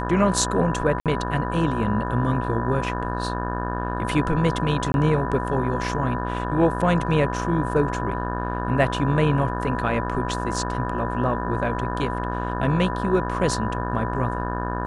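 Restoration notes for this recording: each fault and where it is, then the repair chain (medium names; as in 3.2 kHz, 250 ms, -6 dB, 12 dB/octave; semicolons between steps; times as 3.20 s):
buzz 60 Hz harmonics 30 -28 dBFS
whine 990 Hz -30 dBFS
1.00–1.06 s: dropout 57 ms
4.92–4.94 s: dropout 21 ms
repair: band-stop 990 Hz, Q 30; de-hum 60 Hz, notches 30; interpolate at 1.00 s, 57 ms; interpolate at 4.92 s, 21 ms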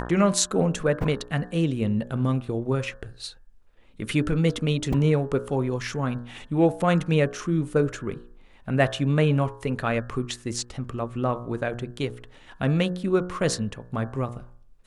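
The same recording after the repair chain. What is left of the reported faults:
nothing left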